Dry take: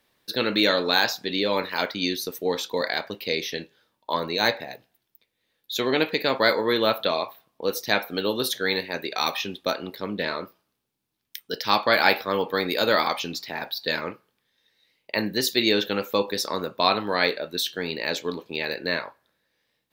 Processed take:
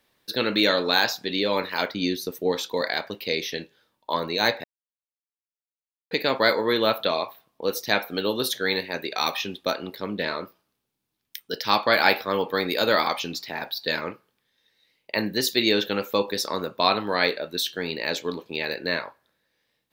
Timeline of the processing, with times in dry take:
1.88–2.52 s: tilt shelf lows +3.5 dB, about 690 Hz
4.64–6.11 s: mute

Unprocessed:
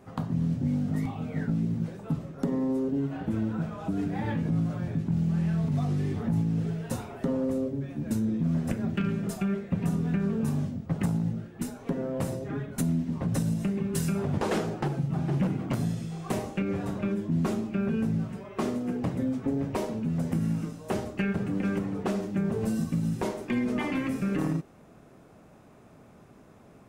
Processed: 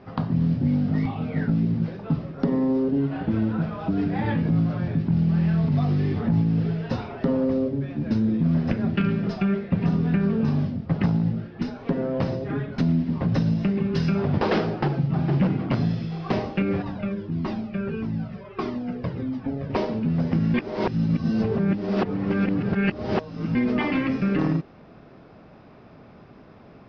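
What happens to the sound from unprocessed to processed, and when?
16.82–19.70 s: Shepard-style flanger falling 1.6 Hz
20.54–23.55 s: reverse
whole clip: elliptic low-pass 5.1 kHz, stop band 40 dB; trim +6.5 dB

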